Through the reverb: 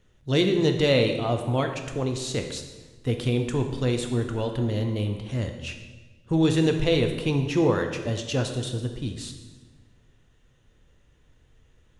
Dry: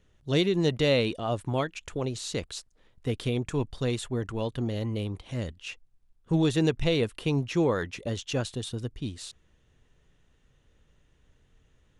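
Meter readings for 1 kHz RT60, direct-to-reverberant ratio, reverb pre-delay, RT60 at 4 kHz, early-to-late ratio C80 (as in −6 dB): 1.2 s, 4.5 dB, 4 ms, 1.1 s, 9.0 dB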